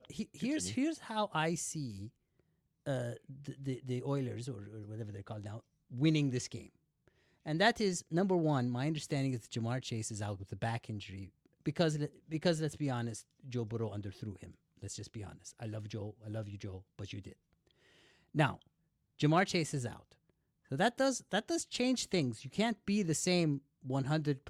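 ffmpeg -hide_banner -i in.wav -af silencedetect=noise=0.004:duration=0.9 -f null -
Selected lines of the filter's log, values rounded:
silence_start: 17.33
silence_end: 18.35 | silence_duration: 1.02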